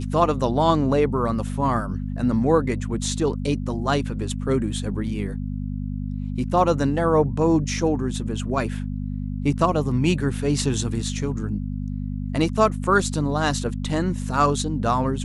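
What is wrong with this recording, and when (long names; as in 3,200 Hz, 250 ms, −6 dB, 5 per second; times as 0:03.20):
mains hum 50 Hz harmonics 5 −28 dBFS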